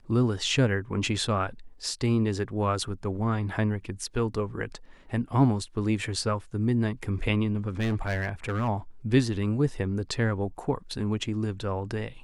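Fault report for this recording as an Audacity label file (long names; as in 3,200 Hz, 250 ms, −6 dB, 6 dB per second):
7.680000	8.690000	clipping −23.5 dBFS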